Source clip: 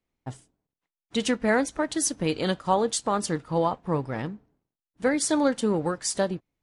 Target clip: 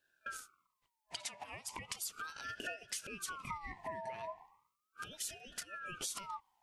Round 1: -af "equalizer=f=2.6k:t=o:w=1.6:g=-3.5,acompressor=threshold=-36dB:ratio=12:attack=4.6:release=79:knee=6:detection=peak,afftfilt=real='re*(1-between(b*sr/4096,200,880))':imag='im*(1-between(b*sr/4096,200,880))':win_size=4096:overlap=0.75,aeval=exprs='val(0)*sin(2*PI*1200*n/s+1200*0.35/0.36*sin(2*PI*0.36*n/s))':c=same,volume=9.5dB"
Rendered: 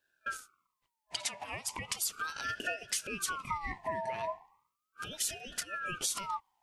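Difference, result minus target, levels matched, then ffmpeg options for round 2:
compressor: peak gain reduction -8 dB
-af "equalizer=f=2.6k:t=o:w=1.6:g=-3.5,acompressor=threshold=-44.5dB:ratio=12:attack=4.6:release=79:knee=6:detection=peak,afftfilt=real='re*(1-between(b*sr/4096,200,880))':imag='im*(1-between(b*sr/4096,200,880))':win_size=4096:overlap=0.75,aeval=exprs='val(0)*sin(2*PI*1200*n/s+1200*0.35/0.36*sin(2*PI*0.36*n/s))':c=same,volume=9.5dB"

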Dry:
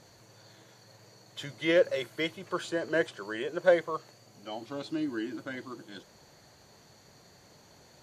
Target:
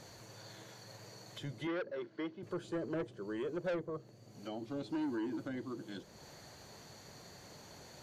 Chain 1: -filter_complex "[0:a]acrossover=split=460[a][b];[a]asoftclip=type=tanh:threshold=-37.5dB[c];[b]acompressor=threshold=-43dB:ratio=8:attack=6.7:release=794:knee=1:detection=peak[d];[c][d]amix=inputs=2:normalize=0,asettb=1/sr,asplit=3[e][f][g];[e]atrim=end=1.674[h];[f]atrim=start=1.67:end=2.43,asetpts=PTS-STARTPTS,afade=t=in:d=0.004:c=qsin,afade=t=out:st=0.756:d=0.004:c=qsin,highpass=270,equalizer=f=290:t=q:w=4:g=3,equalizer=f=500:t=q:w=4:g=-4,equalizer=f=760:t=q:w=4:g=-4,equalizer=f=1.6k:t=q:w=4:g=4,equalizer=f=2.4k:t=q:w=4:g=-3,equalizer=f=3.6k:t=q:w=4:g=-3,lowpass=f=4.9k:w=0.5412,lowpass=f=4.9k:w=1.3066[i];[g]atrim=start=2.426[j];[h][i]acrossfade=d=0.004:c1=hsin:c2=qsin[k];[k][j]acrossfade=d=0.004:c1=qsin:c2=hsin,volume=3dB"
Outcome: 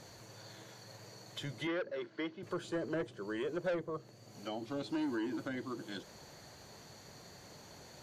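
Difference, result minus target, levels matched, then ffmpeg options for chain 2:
compressor: peak gain reduction -5.5 dB
-filter_complex "[0:a]acrossover=split=460[a][b];[a]asoftclip=type=tanh:threshold=-37.5dB[c];[b]acompressor=threshold=-49.5dB:ratio=8:attack=6.7:release=794:knee=1:detection=peak[d];[c][d]amix=inputs=2:normalize=0,asettb=1/sr,asplit=3[e][f][g];[e]atrim=end=1.674[h];[f]atrim=start=1.67:end=2.43,asetpts=PTS-STARTPTS,afade=t=in:d=0.004:c=qsin,afade=t=out:st=0.756:d=0.004:c=qsin,highpass=270,equalizer=f=290:t=q:w=4:g=3,equalizer=f=500:t=q:w=4:g=-4,equalizer=f=760:t=q:w=4:g=-4,equalizer=f=1.6k:t=q:w=4:g=4,equalizer=f=2.4k:t=q:w=4:g=-3,equalizer=f=3.6k:t=q:w=4:g=-3,lowpass=f=4.9k:w=0.5412,lowpass=f=4.9k:w=1.3066[i];[g]atrim=start=2.426[j];[h][i]acrossfade=d=0.004:c1=hsin:c2=qsin[k];[k][j]acrossfade=d=0.004:c1=qsin:c2=hsin,volume=3dB"

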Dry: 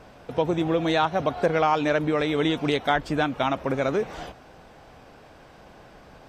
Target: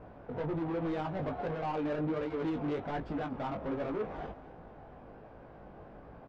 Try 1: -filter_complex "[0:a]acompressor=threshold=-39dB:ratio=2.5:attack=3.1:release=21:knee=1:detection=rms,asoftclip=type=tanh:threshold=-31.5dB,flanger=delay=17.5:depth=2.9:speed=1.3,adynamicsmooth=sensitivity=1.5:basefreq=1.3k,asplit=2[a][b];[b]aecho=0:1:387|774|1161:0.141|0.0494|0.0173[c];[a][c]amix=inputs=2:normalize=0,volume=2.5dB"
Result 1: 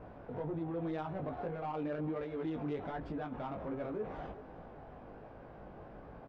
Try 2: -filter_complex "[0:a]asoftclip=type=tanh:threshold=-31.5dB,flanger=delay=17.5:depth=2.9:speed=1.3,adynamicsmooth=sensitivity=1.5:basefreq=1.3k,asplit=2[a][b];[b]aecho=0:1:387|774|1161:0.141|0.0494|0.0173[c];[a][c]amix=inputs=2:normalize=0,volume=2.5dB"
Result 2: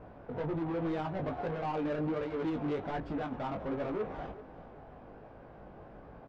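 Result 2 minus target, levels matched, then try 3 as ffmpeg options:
echo 0.152 s late
-filter_complex "[0:a]asoftclip=type=tanh:threshold=-31.5dB,flanger=delay=17.5:depth=2.9:speed=1.3,adynamicsmooth=sensitivity=1.5:basefreq=1.3k,asplit=2[a][b];[b]aecho=0:1:235|470|705:0.141|0.0494|0.0173[c];[a][c]amix=inputs=2:normalize=0,volume=2.5dB"

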